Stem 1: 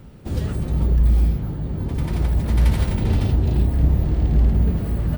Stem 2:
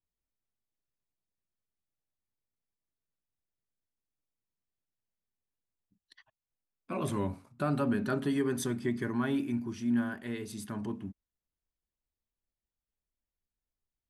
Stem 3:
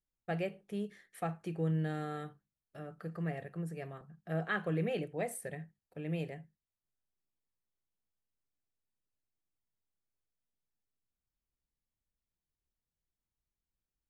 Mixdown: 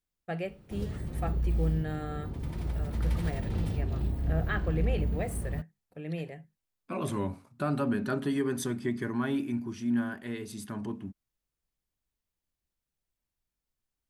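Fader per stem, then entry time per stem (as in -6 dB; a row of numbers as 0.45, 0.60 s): -12.5, +0.5, +1.0 dB; 0.45, 0.00, 0.00 s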